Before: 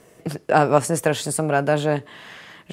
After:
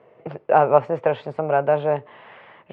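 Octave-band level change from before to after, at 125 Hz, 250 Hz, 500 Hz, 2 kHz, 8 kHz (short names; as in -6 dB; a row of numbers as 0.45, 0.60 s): -6.5 dB, -8.0 dB, +1.5 dB, -5.5 dB, under -40 dB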